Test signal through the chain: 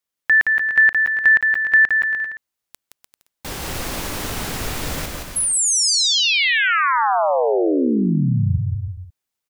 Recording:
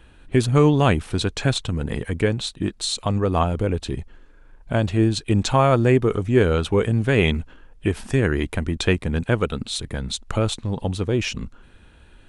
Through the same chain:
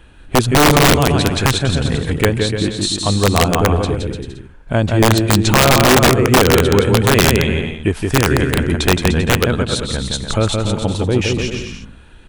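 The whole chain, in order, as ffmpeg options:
-af "aecho=1:1:170|297.5|393.1|464.8|518.6:0.631|0.398|0.251|0.158|0.1,aeval=exprs='(mod(2.66*val(0)+1,2)-1)/2.66':c=same,volume=5dB"

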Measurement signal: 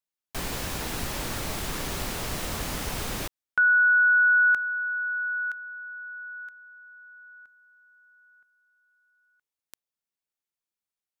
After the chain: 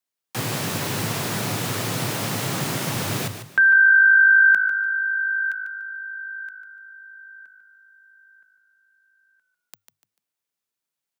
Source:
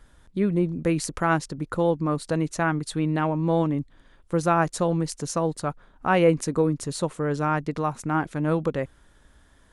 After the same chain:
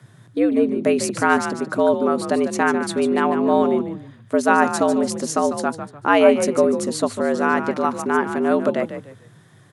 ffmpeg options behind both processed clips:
-filter_complex "[0:a]asplit=4[a][b][c][d];[b]adelay=147,afreqshift=-52,volume=-9.5dB[e];[c]adelay=294,afreqshift=-104,volume=-19.7dB[f];[d]adelay=441,afreqshift=-156,volume=-29.8dB[g];[a][e][f][g]amix=inputs=4:normalize=0,afreqshift=98,volume=5dB"

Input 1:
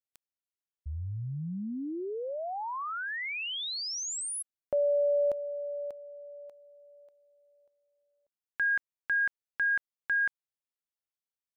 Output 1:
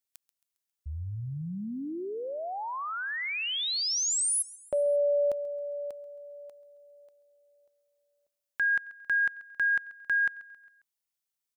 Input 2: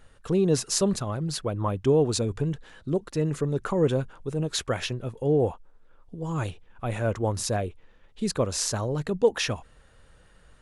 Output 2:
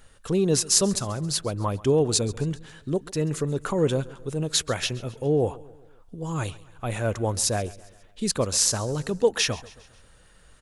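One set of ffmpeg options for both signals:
-filter_complex "[0:a]highshelf=f=3.6k:g=9,asplit=2[a][b];[b]aecho=0:1:135|270|405|540:0.0944|0.0481|0.0246|0.0125[c];[a][c]amix=inputs=2:normalize=0"

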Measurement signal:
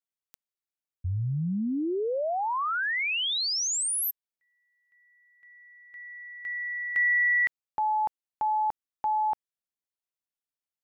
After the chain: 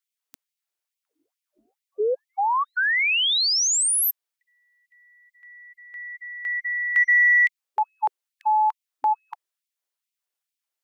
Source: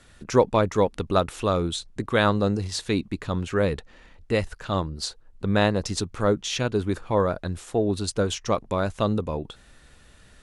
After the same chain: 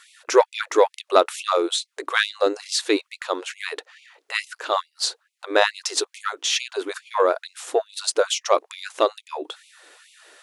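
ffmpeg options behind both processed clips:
-af "acontrast=53,afftfilt=real='re*gte(b*sr/1024,270*pow(2100/270,0.5+0.5*sin(2*PI*2.3*pts/sr)))':imag='im*gte(b*sr/1024,270*pow(2100/270,0.5+0.5*sin(2*PI*2.3*pts/sr)))':win_size=1024:overlap=0.75,volume=1dB"

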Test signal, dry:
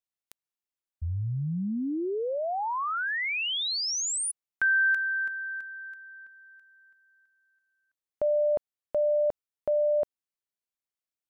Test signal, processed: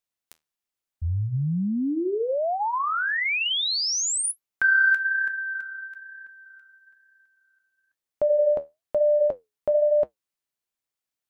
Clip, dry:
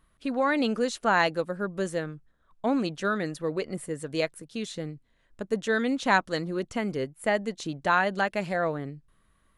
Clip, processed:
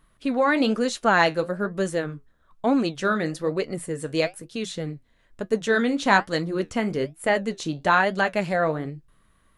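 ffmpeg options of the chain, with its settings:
-af "acontrast=28,flanger=delay=6.8:depth=6.4:regen=-64:speed=1.1:shape=sinusoidal,volume=3.5dB"

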